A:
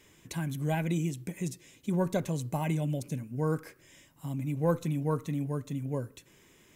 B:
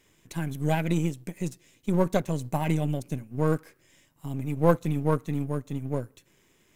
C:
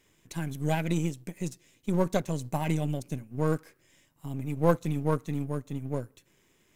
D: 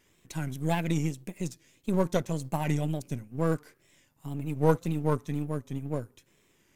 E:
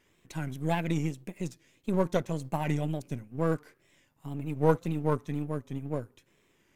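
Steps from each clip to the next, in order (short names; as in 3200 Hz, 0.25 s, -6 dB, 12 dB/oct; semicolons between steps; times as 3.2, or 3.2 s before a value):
half-wave gain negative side -7 dB; upward expander 1.5:1, over -45 dBFS; gain +9 dB
dynamic EQ 5800 Hz, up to +4 dB, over -52 dBFS, Q 0.9; gain -2.5 dB
wow and flutter 110 cents
tone controls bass -2 dB, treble -6 dB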